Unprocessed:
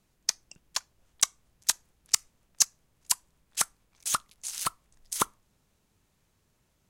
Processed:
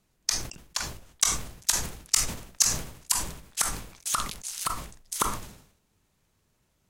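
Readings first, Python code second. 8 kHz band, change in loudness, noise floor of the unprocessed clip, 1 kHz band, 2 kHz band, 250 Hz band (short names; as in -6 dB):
+2.0 dB, +2.0 dB, -72 dBFS, +3.0 dB, +3.5 dB, +8.0 dB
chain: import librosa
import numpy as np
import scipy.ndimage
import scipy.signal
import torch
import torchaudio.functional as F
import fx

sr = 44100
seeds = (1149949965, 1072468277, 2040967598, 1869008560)

y = fx.sustainer(x, sr, db_per_s=85.0)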